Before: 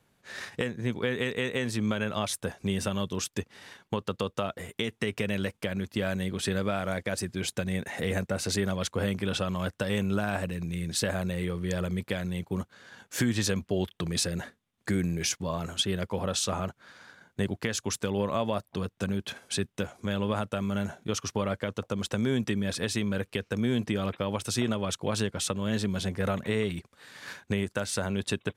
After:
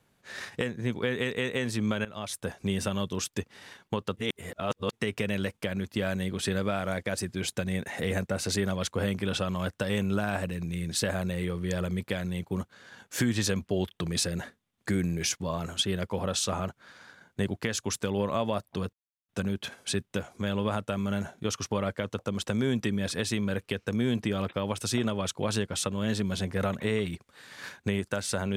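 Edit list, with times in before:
2.05–2.52 fade in, from -15.5 dB
4.17–4.93 reverse
18.93 insert silence 0.36 s

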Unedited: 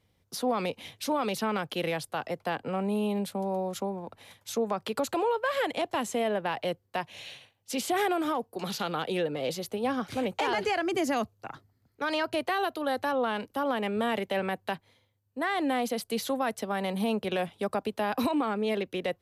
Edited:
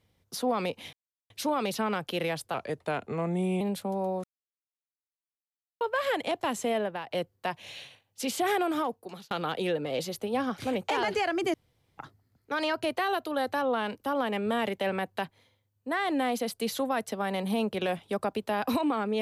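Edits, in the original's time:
0.93 insert silence 0.37 s
2.17–3.11 speed 88%
3.74–5.31 mute
6.27–6.61 fade out, to -12 dB
8.35–8.81 fade out
11.04–11.48 room tone

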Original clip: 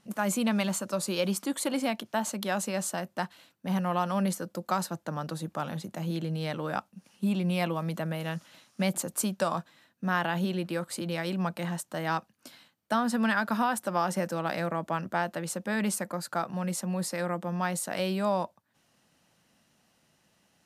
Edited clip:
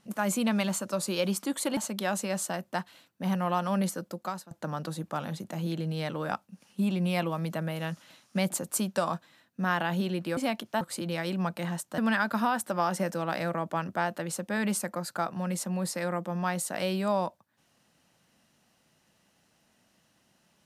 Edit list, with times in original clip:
1.77–2.21 move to 10.81
4.47–4.95 fade out, to -20 dB
11.98–13.15 cut

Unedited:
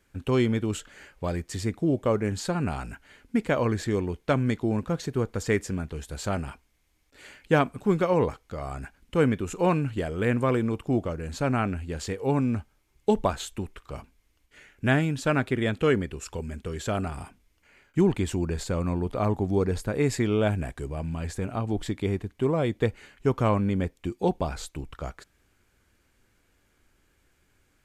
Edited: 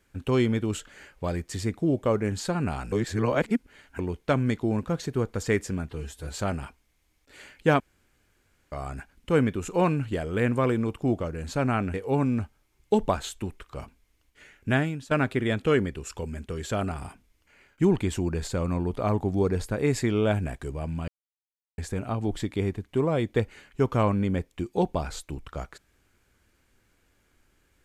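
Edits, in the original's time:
2.92–3.99 reverse
5.89–6.19 stretch 1.5×
7.65–8.57 room tone
11.79–12.1 cut
14.84–15.27 fade out, to -13.5 dB
21.24 insert silence 0.70 s

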